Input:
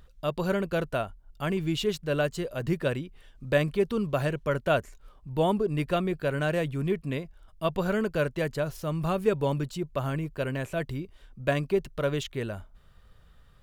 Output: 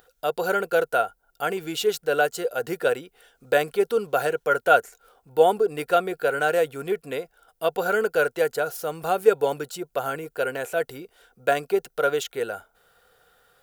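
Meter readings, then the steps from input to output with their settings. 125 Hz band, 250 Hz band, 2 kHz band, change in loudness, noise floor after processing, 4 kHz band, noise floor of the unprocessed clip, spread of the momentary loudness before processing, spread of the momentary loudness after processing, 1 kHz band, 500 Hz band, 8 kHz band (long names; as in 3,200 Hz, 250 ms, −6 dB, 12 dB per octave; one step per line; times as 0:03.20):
−12.0 dB, −5.0 dB, +7.5 dB, +4.5 dB, −70 dBFS, +3.5 dB, −57 dBFS, 9 LU, 10 LU, +9.5 dB, +6.0 dB, +8.5 dB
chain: RIAA equalisation recording
hollow resonant body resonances 480/730/1,400 Hz, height 17 dB, ringing for 30 ms
level −3 dB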